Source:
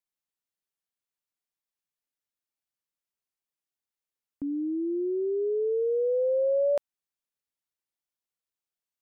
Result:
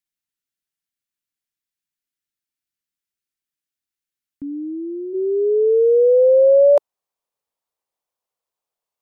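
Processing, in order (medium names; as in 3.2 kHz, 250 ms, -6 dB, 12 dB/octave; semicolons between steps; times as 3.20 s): high-order bell 700 Hz -8.5 dB, from 5.13 s +10 dB; trim +3 dB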